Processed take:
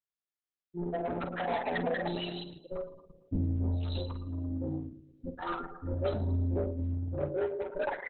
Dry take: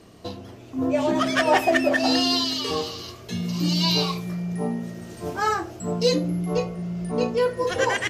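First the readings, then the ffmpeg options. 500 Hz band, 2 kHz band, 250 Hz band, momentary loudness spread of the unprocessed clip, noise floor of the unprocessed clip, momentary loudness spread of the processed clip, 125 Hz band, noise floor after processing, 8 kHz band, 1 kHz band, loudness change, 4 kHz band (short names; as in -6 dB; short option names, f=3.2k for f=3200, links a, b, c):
-10.5 dB, -14.5 dB, -12.0 dB, 14 LU, -44 dBFS, 10 LU, -4.5 dB, under -85 dBFS, under -40 dB, -12.0 dB, -11.0 dB, -21.0 dB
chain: -filter_complex "[0:a]equalizer=f=91:w=3.5:g=5,acrossover=split=150|1600[a][b][c];[a]dynaudnorm=f=180:g=11:m=7dB[d];[d][b][c]amix=inputs=3:normalize=0,afftfilt=real='re*gte(hypot(re,im),0.316)':imag='im*gte(hypot(re,im),0.316)':win_size=1024:overlap=0.75,asplit=2[e][f];[f]adelay=112,lowpass=f=3.1k:p=1,volume=-12dB,asplit=2[g][h];[h]adelay=112,lowpass=f=3.1k:p=1,volume=0.48,asplit=2[i][j];[j]adelay=112,lowpass=f=3.1k:p=1,volume=0.48,asplit=2[k][l];[l]adelay=112,lowpass=f=3.1k:p=1,volume=0.48,asplit=2[m][n];[n]adelay=112,lowpass=f=3.1k:p=1,volume=0.48[o];[g][i][k][m][o]amix=inputs=5:normalize=0[p];[e][p]amix=inputs=2:normalize=0,aeval=exprs='val(0)*sin(2*PI*88*n/s)':c=same,asoftclip=type=tanh:threshold=-23.5dB,asplit=2[q][r];[r]adelay=47,volume=-8dB[s];[q][s]amix=inputs=2:normalize=0,aphaser=in_gain=1:out_gain=1:delay=4.7:decay=0.43:speed=0.3:type=triangular,asuperstop=centerf=1100:order=12:qfactor=6.9,volume=-3.5dB" -ar 48000 -c:a libopus -b:a 8k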